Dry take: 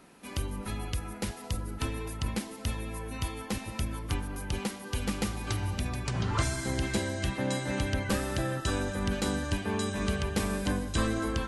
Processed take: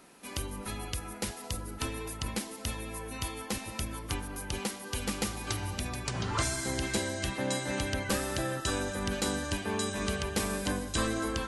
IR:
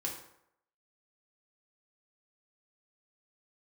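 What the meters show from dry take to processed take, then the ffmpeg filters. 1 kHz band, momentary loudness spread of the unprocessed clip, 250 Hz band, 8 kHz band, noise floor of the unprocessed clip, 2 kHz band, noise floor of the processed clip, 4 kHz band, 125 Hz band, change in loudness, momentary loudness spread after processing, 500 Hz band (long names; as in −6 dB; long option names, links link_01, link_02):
0.0 dB, 6 LU, −2.5 dB, +3.5 dB, −44 dBFS, 0.0 dB, −44 dBFS, +1.5 dB, −4.5 dB, −1.0 dB, 7 LU, −0.5 dB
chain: -af "bass=frequency=250:gain=-5,treble=frequency=4000:gain=4"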